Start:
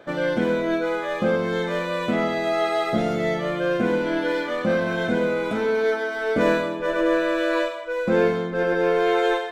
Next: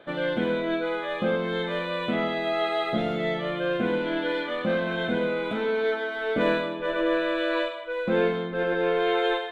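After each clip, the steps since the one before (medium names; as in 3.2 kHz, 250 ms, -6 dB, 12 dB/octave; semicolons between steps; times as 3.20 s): resonant high shelf 4.4 kHz -7 dB, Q 3; hum notches 50/100 Hz; trim -4 dB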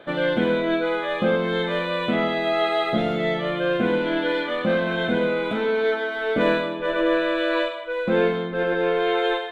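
gain riding 2 s; trim +3.5 dB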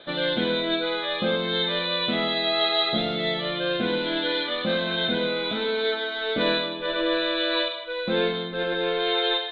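resonant low-pass 3.9 kHz, resonance Q 9.1; trim -4.5 dB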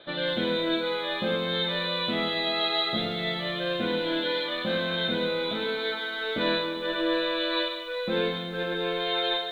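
reverberation RT60 0.90 s, pre-delay 4 ms, DRR 12 dB; bit-crushed delay 196 ms, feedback 55%, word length 8-bit, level -12.5 dB; trim -3.5 dB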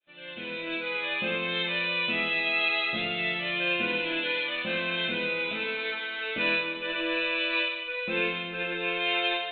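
fade-in on the opening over 1.06 s; resonant low-pass 2.6 kHz, resonance Q 13; feedback comb 350 Hz, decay 0.63 s, mix 50%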